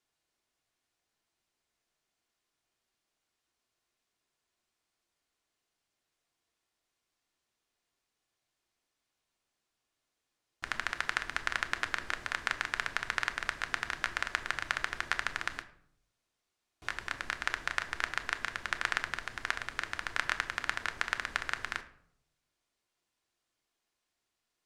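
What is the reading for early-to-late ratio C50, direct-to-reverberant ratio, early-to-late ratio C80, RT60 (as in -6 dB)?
14.0 dB, 7.5 dB, 17.0 dB, 0.70 s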